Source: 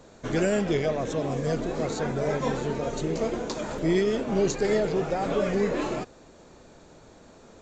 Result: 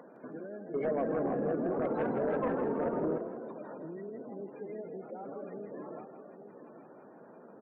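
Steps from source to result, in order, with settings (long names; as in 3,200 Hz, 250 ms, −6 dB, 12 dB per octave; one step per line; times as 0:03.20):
sub-octave generator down 1 octave, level 0 dB
low-pass filter 2,300 Hz 12 dB per octave
downward compressor 4 to 1, threshold −39 dBFS, peak gain reduction 18 dB
high-pass filter 200 Hz 24 dB per octave
single-tap delay 828 ms −10.5 dB
upward compression, threshold −46 dBFS
gate on every frequency bin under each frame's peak −20 dB strong
0:00.74–0:03.18: sine wavefolder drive 10 dB, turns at −23 dBFS
echo with shifted repeats 162 ms, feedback 47%, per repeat +33 Hz, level −9 dB
level −3 dB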